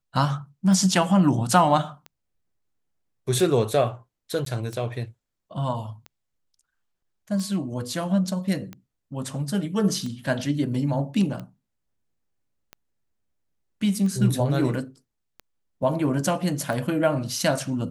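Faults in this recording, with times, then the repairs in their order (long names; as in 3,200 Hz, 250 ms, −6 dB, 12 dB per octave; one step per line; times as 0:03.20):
scratch tick 45 rpm
0:04.45–0:04.46: drop-out 13 ms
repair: click removal
repair the gap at 0:04.45, 13 ms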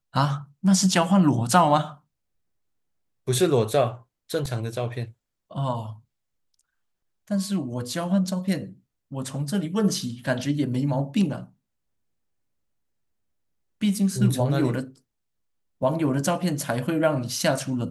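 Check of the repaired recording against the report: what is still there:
none of them is left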